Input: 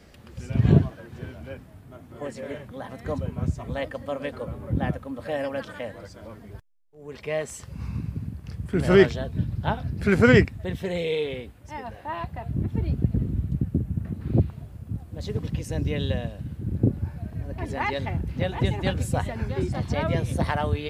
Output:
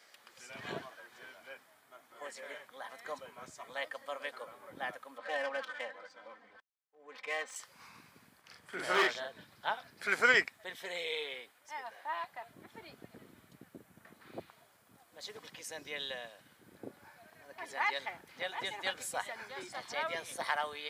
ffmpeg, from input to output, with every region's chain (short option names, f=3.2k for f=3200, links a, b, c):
-filter_complex "[0:a]asettb=1/sr,asplit=3[a][b][c];[a]atrim=end=5.184[d];[b]atrim=start=5.18:end=7.56,asetpts=PTS-STARTPTS,afade=t=in:d=0.004:c=qsin,afade=t=out:st=2.376:d=0.004:c=qsin,aecho=1:1:3.9:0.85,atrim=end_sample=104958,adynamicsmooth=sensitivity=6.5:basefreq=2.8k[e];[c]atrim=start=7.556[f];[d][e]acrossfade=d=0.004:c1=hsin:c2=qsin[g];[g][f]acrossfade=d=0.004:c1=qsin:c2=hsin,asettb=1/sr,asplit=3[h][i][j];[h]atrim=end=8.414[k];[i]atrim=start=8.41:end=9.41,asetpts=PTS-STARTPTS,afade=t=in:d=0.004:c=qsin,afade=t=out:st=0.996:d=0.004:c=qsin,highshelf=f=6.3k:g=-6,asplit=2[l][m];[m]adelay=43,volume=-2dB[n];[l][n]amix=inputs=2:normalize=0,atrim=end_sample=44100,asoftclip=type=hard:threshold=-10.5dB[o];[j]atrim=start=9.406[p];[k][o]acrossfade=d=0.004:c1=hsin:c2=qsin[q];[q][p]acrossfade=d=0.004:c1=qsin:c2=hsin,highpass=990,bandreject=f=2.7k:w=11,volume=-2dB"